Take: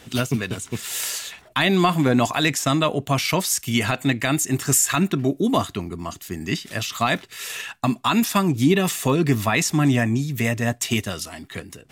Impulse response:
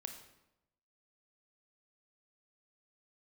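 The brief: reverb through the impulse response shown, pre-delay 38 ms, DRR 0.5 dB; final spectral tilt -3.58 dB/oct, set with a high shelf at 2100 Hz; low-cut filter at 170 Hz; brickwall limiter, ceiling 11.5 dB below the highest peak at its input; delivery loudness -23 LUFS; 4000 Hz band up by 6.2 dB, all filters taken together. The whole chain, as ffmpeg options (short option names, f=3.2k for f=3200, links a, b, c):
-filter_complex "[0:a]highpass=170,highshelf=f=2.1k:g=4.5,equalizer=f=4k:t=o:g=3.5,alimiter=limit=-13dB:level=0:latency=1,asplit=2[a][b];[1:a]atrim=start_sample=2205,adelay=38[c];[b][c]afir=irnorm=-1:irlink=0,volume=2.5dB[d];[a][d]amix=inputs=2:normalize=0,volume=-2dB"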